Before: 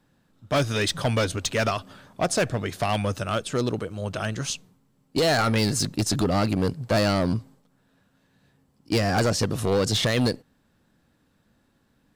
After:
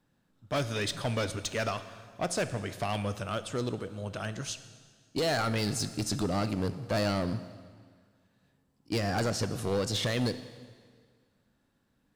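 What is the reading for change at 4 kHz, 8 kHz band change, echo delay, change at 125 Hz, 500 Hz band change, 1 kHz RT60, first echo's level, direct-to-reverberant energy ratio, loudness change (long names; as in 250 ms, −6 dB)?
−7.0 dB, −7.0 dB, no echo audible, −7.0 dB, −7.0 dB, 1.8 s, no echo audible, 11.5 dB, −7.5 dB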